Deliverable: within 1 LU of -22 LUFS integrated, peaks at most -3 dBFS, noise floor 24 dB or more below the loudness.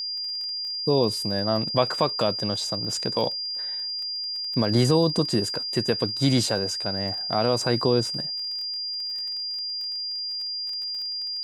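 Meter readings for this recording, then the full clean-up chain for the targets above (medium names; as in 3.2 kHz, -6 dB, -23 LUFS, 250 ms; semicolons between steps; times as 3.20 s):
tick rate 24 per s; steady tone 4.8 kHz; tone level -28 dBFS; loudness -25.0 LUFS; peak level -7.5 dBFS; loudness target -22.0 LUFS
-> de-click; band-stop 4.8 kHz, Q 30; trim +3 dB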